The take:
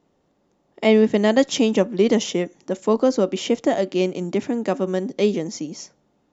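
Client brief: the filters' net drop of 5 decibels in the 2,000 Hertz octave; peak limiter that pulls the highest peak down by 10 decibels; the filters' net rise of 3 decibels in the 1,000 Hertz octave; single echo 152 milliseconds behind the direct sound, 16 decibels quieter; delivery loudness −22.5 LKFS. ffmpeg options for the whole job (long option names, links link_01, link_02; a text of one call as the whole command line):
ffmpeg -i in.wav -af "equalizer=frequency=1000:width_type=o:gain=5.5,equalizer=frequency=2000:width_type=o:gain=-7,alimiter=limit=-14dB:level=0:latency=1,aecho=1:1:152:0.158,volume=2.5dB" out.wav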